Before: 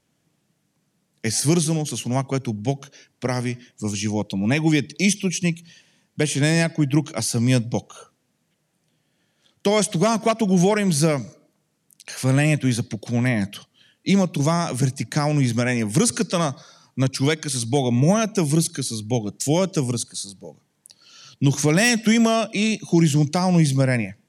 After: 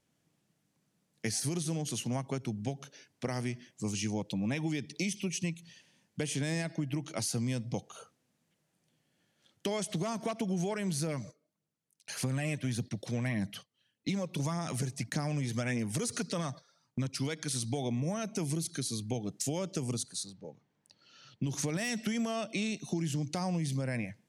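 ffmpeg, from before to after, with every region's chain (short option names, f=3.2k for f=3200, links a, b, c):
-filter_complex "[0:a]asettb=1/sr,asplit=3[a][b][c];[a]atrim=end=11.074[d];[b]atrim=start=11.07:end=17.06,asetpts=PTS-STARTPTS,afade=t=in:d=0.004:c=qsin,afade=t=out:st=5.986:d=0.004:c=qsin,agate=range=-13dB:threshold=-43dB:ratio=16:release=100:detection=peak,aphaser=in_gain=1:out_gain=1:delay=2.5:decay=0.39:speed=1.7:type=triangular[e];[c]atrim=start=17.056[f];[d][e]acrossfade=d=0.004:c1=hsin:c2=qsin[g];[g][f]acrossfade=d=0.004:c1=qsin:c2=hsin,asettb=1/sr,asplit=3[h][i][j];[h]atrim=end=20.234[k];[i]atrim=start=20.23:end=21.47,asetpts=PTS-STARTPTS,afade=t=in:d=0.004:c=qsin,afade=t=out:st=1.236:d=0.004:c=qsin,highshelf=f=4.5k:g=-5.5,adynamicsmooth=sensitivity=3:basefreq=6.1k[l];[j]atrim=start=21.466[m];[k][l]acrossfade=d=0.004:c1=hsin:c2=qsin[n];[n][m]acrossfade=d=0.004:c1=qsin:c2=hsin,alimiter=limit=-11dB:level=0:latency=1,acompressor=threshold=-23dB:ratio=6,volume=-7dB"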